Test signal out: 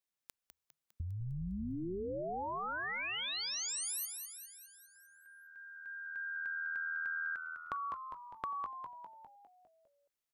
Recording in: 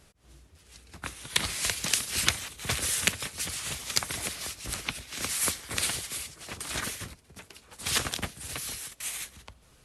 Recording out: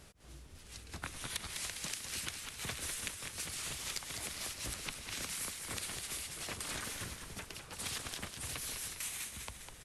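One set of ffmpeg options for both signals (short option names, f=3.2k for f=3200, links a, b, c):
-filter_complex "[0:a]acompressor=threshold=-40dB:ratio=12,asplit=2[a][b];[b]asplit=7[c][d][e][f][g][h][i];[c]adelay=202,afreqshift=-80,volume=-6.5dB[j];[d]adelay=404,afreqshift=-160,volume=-11.5dB[k];[e]adelay=606,afreqshift=-240,volume=-16.6dB[l];[f]adelay=808,afreqshift=-320,volume=-21.6dB[m];[g]adelay=1010,afreqshift=-400,volume=-26.6dB[n];[h]adelay=1212,afreqshift=-480,volume=-31.7dB[o];[i]adelay=1414,afreqshift=-560,volume=-36.7dB[p];[j][k][l][m][n][o][p]amix=inputs=7:normalize=0[q];[a][q]amix=inputs=2:normalize=0,volume=1.5dB"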